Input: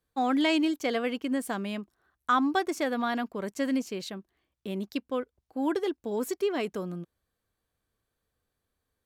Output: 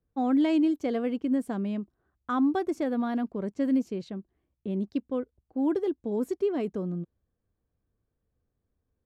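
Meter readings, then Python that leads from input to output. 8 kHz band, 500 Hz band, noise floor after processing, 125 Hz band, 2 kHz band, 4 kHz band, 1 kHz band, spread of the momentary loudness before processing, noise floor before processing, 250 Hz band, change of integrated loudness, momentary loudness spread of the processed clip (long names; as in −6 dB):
below −10 dB, +0.5 dB, −81 dBFS, +4.5 dB, −9.5 dB, below −10 dB, −5.0 dB, 14 LU, −84 dBFS, +3.0 dB, +1.0 dB, 12 LU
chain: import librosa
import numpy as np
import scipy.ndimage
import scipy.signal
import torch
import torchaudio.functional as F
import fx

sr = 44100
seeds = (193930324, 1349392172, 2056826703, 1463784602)

y = fx.env_lowpass(x, sr, base_hz=2800.0, full_db=-25.5)
y = fx.tilt_shelf(y, sr, db=9.0, hz=690.0)
y = F.gain(torch.from_numpy(y), -3.0).numpy()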